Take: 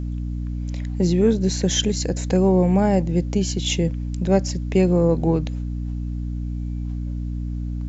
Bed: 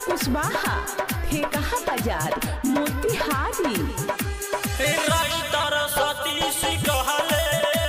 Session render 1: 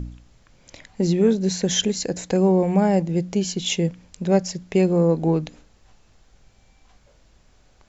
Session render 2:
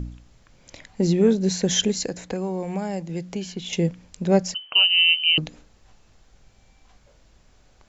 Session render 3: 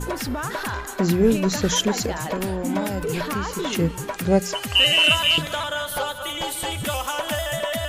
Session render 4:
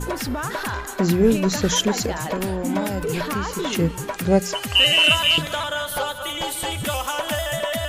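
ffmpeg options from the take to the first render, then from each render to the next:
-af "bandreject=f=60:t=h:w=4,bandreject=f=120:t=h:w=4,bandreject=f=180:t=h:w=4,bandreject=f=240:t=h:w=4,bandreject=f=300:t=h:w=4"
-filter_complex "[0:a]asettb=1/sr,asplit=3[s0][s1][s2];[s0]atrim=end=2.084[s3];[s1]atrim=start=2.08:end=3.73,asetpts=PTS-STARTPTS,afade=t=in:d=0.004:c=qsin,afade=t=out:st=1.646:d=0.004:c=qsin,acrossover=split=120|850|3200[s4][s5][s6][s7];[s4]acompressor=threshold=0.00447:ratio=3[s8];[s5]acompressor=threshold=0.0316:ratio=3[s9];[s6]acompressor=threshold=0.0112:ratio=3[s10];[s7]acompressor=threshold=0.00501:ratio=3[s11];[s8][s9][s10][s11]amix=inputs=4:normalize=0[s12];[s2]atrim=start=3.726[s13];[s3][s12]acrossfade=d=0.004:c1=hsin:c2=qsin[s14];[s14][s13]acrossfade=d=0.004:c1=qsin:c2=hsin,asettb=1/sr,asplit=3[s15][s16][s17];[s15]atrim=end=4.544[s18];[s16]atrim=start=4.54:end=5.38,asetpts=PTS-STARTPTS,afade=t=in:d=0.004:c=qsin,afade=t=out:st=0.836:d=0.004:c=qsin,lowpass=f=2700:t=q:w=0.5098,lowpass=f=2700:t=q:w=0.6013,lowpass=f=2700:t=q:w=0.9,lowpass=f=2700:t=q:w=2.563,afreqshift=-3200[s19];[s17]atrim=start=5.376[s20];[s18][s19]acrossfade=d=0.004:c1=hsin:c2=qsin[s21];[s21][s20]acrossfade=d=0.004:c1=qsin:c2=hsin"
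-filter_complex "[1:a]volume=0.631[s0];[0:a][s0]amix=inputs=2:normalize=0"
-af "volume=1.12"

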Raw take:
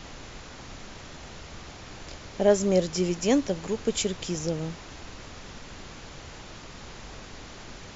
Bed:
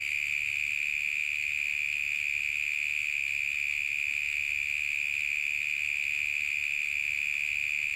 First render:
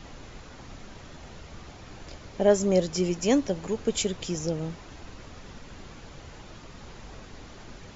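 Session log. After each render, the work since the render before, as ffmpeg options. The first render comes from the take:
-af "afftdn=nr=6:nf=-44"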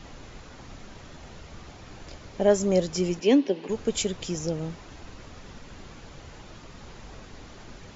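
-filter_complex "[0:a]asplit=3[s0][s1][s2];[s0]afade=t=out:st=3.19:d=0.02[s3];[s1]highpass=f=210:w=0.5412,highpass=f=210:w=1.3066,equalizer=f=270:t=q:w=4:g=4,equalizer=f=400:t=q:w=4:g=8,equalizer=f=650:t=q:w=4:g=-5,equalizer=f=1300:t=q:w=4:g=-9,equalizer=f=2800:t=q:w=4:g=6,lowpass=f=4800:w=0.5412,lowpass=f=4800:w=1.3066,afade=t=in:st=3.19:d=0.02,afade=t=out:st=3.68:d=0.02[s4];[s2]afade=t=in:st=3.68:d=0.02[s5];[s3][s4][s5]amix=inputs=3:normalize=0"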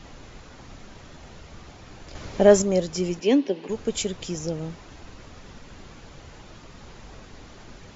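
-filter_complex "[0:a]asettb=1/sr,asplit=3[s0][s1][s2];[s0]atrim=end=2.154[s3];[s1]atrim=start=2.15:end=2.62,asetpts=PTS-STARTPTS,afade=t=in:d=0.004:c=qsin,afade=t=out:st=0.466:d=0.004:c=qsin,acontrast=80[s4];[s2]atrim=start=2.616[s5];[s3][s4]acrossfade=d=0.004:c1=hsin:c2=qsin[s6];[s6][s5]acrossfade=d=0.004:c1=qsin:c2=hsin"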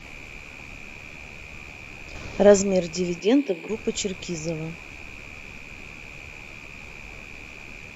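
-filter_complex "[1:a]volume=0.237[s0];[0:a][s0]amix=inputs=2:normalize=0"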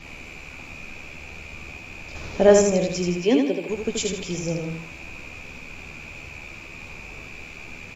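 -filter_complex "[0:a]asplit=2[s0][s1];[s1]adelay=12,volume=0.266[s2];[s0][s2]amix=inputs=2:normalize=0,aecho=1:1:79|158|237|316:0.596|0.208|0.073|0.0255"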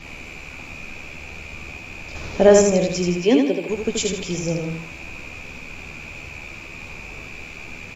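-af "volume=1.41,alimiter=limit=0.794:level=0:latency=1"

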